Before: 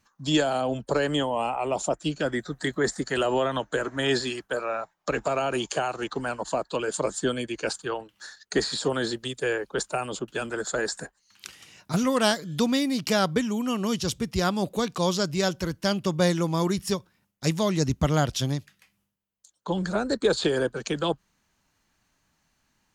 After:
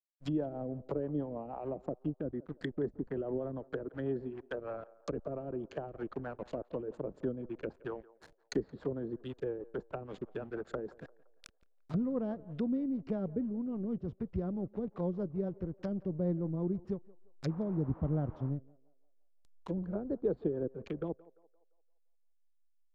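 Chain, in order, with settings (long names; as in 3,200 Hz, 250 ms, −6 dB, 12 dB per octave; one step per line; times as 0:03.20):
slack as between gear wheels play −30.5 dBFS
rotating-speaker cabinet horn 6.3 Hz
treble cut that deepens with the level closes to 480 Hz, closed at −26.5 dBFS
on a send: feedback echo with a band-pass in the loop 172 ms, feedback 48%, band-pass 770 Hz, level −19 dB
0:17.48–0:18.49: on the sum: noise in a band 120–1,100 Hz −49 dBFS
level −6 dB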